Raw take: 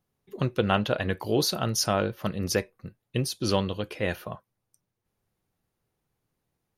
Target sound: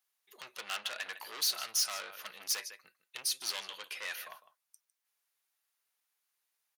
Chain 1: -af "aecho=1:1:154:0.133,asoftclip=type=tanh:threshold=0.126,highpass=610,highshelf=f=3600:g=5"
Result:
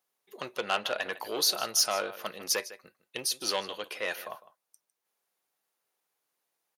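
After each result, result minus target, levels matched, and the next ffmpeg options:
500 Hz band +12.5 dB; saturation: distortion -8 dB
-af "aecho=1:1:154:0.133,asoftclip=type=tanh:threshold=0.126,highpass=1400,highshelf=f=3600:g=5"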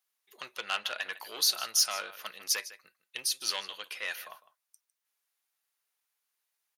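saturation: distortion -8 dB
-af "aecho=1:1:154:0.133,asoftclip=type=tanh:threshold=0.0355,highpass=1400,highshelf=f=3600:g=5"

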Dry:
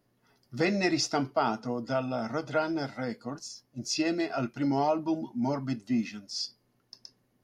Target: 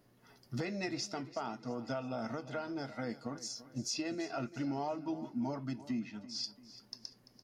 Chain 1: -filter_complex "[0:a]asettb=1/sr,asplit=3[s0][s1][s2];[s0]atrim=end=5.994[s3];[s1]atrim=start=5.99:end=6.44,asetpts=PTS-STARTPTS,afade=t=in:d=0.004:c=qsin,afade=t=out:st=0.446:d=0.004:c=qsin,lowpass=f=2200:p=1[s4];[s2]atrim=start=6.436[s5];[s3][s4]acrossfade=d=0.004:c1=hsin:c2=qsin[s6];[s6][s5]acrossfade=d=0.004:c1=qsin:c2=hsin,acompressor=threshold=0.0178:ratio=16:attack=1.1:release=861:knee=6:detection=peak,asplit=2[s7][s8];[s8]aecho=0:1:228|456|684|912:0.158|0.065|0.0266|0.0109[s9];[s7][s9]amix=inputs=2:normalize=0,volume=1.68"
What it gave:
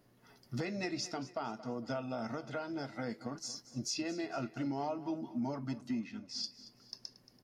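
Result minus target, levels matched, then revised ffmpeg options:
echo 112 ms early
-filter_complex "[0:a]asettb=1/sr,asplit=3[s0][s1][s2];[s0]atrim=end=5.994[s3];[s1]atrim=start=5.99:end=6.44,asetpts=PTS-STARTPTS,afade=t=in:d=0.004:c=qsin,afade=t=out:st=0.446:d=0.004:c=qsin,lowpass=f=2200:p=1[s4];[s2]atrim=start=6.436[s5];[s3][s4]acrossfade=d=0.004:c1=hsin:c2=qsin[s6];[s6][s5]acrossfade=d=0.004:c1=qsin:c2=hsin,acompressor=threshold=0.0178:ratio=16:attack=1.1:release=861:knee=6:detection=peak,asplit=2[s7][s8];[s8]aecho=0:1:340|680|1020|1360:0.158|0.065|0.0266|0.0109[s9];[s7][s9]amix=inputs=2:normalize=0,volume=1.68"

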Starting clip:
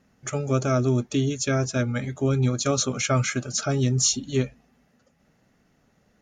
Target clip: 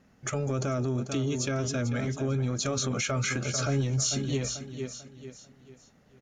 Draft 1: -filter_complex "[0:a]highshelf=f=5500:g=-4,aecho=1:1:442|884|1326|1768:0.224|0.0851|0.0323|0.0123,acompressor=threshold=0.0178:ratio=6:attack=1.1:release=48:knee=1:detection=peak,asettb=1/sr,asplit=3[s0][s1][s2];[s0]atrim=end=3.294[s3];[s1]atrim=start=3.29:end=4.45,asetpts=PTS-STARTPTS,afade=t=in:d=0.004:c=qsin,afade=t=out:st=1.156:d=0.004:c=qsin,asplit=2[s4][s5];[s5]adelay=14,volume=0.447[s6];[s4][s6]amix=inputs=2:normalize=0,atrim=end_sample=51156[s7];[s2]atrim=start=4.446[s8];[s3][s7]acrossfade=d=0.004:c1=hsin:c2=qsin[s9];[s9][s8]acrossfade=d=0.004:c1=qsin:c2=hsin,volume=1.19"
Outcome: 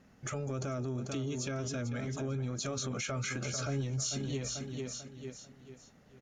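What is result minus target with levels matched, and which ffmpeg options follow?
compression: peak gain reduction +7 dB
-filter_complex "[0:a]highshelf=f=5500:g=-4,aecho=1:1:442|884|1326|1768:0.224|0.0851|0.0323|0.0123,acompressor=threshold=0.0473:ratio=6:attack=1.1:release=48:knee=1:detection=peak,asettb=1/sr,asplit=3[s0][s1][s2];[s0]atrim=end=3.294[s3];[s1]atrim=start=3.29:end=4.45,asetpts=PTS-STARTPTS,afade=t=in:d=0.004:c=qsin,afade=t=out:st=1.156:d=0.004:c=qsin,asplit=2[s4][s5];[s5]adelay=14,volume=0.447[s6];[s4][s6]amix=inputs=2:normalize=0,atrim=end_sample=51156[s7];[s2]atrim=start=4.446[s8];[s3][s7]acrossfade=d=0.004:c1=hsin:c2=qsin[s9];[s9][s8]acrossfade=d=0.004:c1=qsin:c2=hsin,volume=1.19"

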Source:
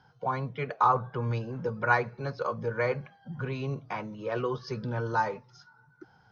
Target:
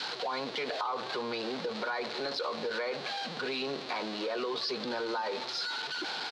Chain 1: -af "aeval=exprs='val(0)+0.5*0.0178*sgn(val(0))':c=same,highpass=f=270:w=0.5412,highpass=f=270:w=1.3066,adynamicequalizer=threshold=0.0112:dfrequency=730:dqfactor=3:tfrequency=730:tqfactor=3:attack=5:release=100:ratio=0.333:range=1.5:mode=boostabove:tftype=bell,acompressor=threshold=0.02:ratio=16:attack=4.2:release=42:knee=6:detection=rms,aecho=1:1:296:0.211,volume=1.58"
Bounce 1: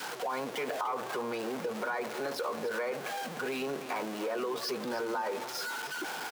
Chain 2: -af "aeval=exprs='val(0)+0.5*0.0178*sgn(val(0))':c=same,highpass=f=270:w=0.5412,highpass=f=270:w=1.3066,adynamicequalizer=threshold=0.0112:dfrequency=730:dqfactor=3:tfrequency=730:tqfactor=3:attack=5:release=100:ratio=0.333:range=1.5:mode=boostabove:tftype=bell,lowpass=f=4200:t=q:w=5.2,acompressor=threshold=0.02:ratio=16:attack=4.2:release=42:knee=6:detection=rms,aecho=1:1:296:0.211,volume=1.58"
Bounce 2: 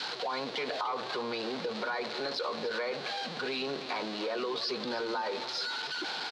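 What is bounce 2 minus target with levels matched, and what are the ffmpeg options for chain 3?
echo-to-direct +7 dB
-af "aeval=exprs='val(0)+0.5*0.0178*sgn(val(0))':c=same,highpass=f=270:w=0.5412,highpass=f=270:w=1.3066,adynamicequalizer=threshold=0.0112:dfrequency=730:dqfactor=3:tfrequency=730:tqfactor=3:attack=5:release=100:ratio=0.333:range=1.5:mode=boostabove:tftype=bell,lowpass=f=4200:t=q:w=5.2,acompressor=threshold=0.02:ratio=16:attack=4.2:release=42:knee=6:detection=rms,aecho=1:1:296:0.0944,volume=1.58"

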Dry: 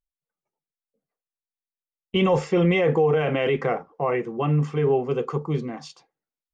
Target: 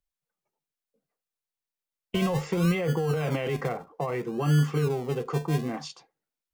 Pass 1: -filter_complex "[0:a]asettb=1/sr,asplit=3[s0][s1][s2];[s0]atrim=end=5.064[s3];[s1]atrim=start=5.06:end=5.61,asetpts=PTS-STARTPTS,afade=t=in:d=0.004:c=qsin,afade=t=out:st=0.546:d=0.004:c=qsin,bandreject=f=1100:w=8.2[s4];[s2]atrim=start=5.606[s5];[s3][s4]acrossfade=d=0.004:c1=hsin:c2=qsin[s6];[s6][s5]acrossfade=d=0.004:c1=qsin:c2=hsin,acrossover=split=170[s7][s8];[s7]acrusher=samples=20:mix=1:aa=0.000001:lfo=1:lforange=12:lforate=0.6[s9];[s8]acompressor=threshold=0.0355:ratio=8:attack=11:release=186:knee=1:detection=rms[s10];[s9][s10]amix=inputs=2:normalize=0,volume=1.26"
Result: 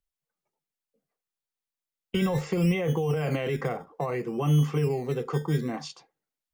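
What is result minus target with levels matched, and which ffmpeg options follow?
decimation with a swept rate: distortion -7 dB
-filter_complex "[0:a]asettb=1/sr,asplit=3[s0][s1][s2];[s0]atrim=end=5.064[s3];[s1]atrim=start=5.06:end=5.61,asetpts=PTS-STARTPTS,afade=t=in:d=0.004:c=qsin,afade=t=out:st=0.546:d=0.004:c=qsin,bandreject=f=1100:w=8.2[s4];[s2]atrim=start=5.606[s5];[s3][s4]acrossfade=d=0.004:c1=hsin:c2=qsin[s6];[s6][s5]acrossfade=d=0.004:c1=qsin:c2=hsin,acrossover=split=170[s7][s8];[s7]acrusher=samples=40:mix=1:aa=0.000001:lfo=1:lforange=24:lforate=0.6[s9];[s8]acompressor=threshold=0.0355:ratio=8:attack=11:release=186:knee=1:detection=rms[s10];[s9][s10]amix=inputs=2:normalize=0,volume=1.26"

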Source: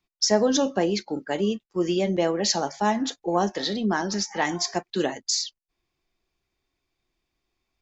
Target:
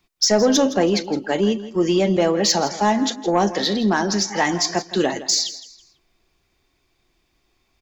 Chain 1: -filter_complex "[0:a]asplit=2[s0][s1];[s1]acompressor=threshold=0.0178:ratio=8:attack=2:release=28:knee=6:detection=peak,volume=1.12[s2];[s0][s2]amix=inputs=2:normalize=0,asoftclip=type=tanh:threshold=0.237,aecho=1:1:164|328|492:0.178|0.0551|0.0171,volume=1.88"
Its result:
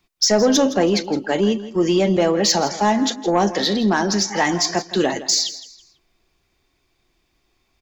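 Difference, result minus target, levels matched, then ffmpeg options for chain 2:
compression: peak gain reduction -8 dB
-filter_complex "[0:a]asplit=2[s0][s1];[s1]acompressor=threshold=0.00631:ratio=8:attack=2:release=28:knee=6:detection=peak,volume=1.12[s2];[s0][s2]amix=inputs=2:normalize=0,asoftclip=type=tanh:threshold=0.237,aecho=1:1:164|328|492:0.178|0.0551|0.0171,volume=1.88"

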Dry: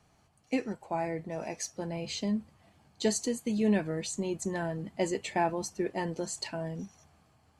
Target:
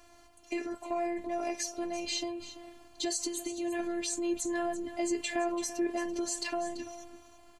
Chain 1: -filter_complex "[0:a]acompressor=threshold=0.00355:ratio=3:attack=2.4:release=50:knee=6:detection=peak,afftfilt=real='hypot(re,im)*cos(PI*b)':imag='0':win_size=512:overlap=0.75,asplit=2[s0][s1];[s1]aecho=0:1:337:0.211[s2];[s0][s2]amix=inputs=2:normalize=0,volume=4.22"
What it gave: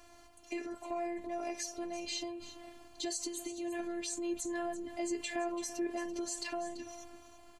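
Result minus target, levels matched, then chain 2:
compression: peak gain reduction +4.5 dB
-filter_complex "[0:a]acompressor=threshold=0.00794:ratio=3:attack=2.4:release=50:knee=6:detection=peak,afftfilt=real='hypot(re,im)*cos(PI*b)':imag='0':win_size=512:overlap=0.75,asplit=2[s0][s1];[s1]aecho=0:1:337:0.211[s2];[s0][s2]amix=inputs=2:normalize=0,volume=4.22"

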